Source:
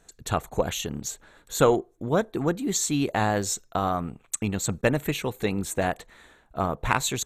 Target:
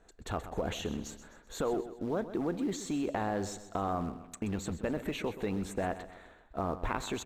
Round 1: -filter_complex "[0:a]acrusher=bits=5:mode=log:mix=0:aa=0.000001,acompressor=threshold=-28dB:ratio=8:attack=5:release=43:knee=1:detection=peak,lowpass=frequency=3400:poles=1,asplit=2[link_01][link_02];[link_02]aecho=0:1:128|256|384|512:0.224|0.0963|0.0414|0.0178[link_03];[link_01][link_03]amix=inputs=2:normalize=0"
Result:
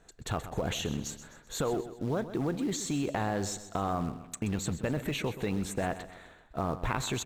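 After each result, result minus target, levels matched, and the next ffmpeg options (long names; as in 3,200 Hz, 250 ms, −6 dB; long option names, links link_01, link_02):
125 Hz band +3.5 dB; 4,000 Hz band +3.5 dB
-filter_complex "[0:a]acrusher=bits=5:mode=log:mix=0:aa=0.000001,acompressor=threshold=-28dB:ratio=8:attack=5:release=43:knee=1:detection=peak,lowpass=frequency=3400:poles=1,equalizer=frequency=130:width_type=o:width=0.53:gain=-13,asplit=2[link_01][link_02];[link_02]aecho=0:1:128|256|384|512:0.224|0.0963|0.0414|0.0178[link_03];[link_01][link_03]amix=inputs=2:normalize=0"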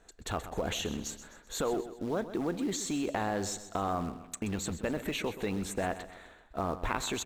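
4,000 Hz band +4.5 dB
-filter_complex "[0:a]acrusher=bits=5:mode=log:mix=0:aa=0.000001,acompressor=threshold=-28dB:ratio=8:attack=5:release=43:knee=1:detection=peak,lowpass=frequency=1400:poles=1,equalizer=frequency=130:width_type=o:width=0.53:gain=-13,asplit=2[link_01][link_02];[link_02]aecho=0:1:128|256|384|512:0.224|0.0963|0.0414|0.0178[link_03];[link_01][link_03]amix=inputs=2:normalize=0"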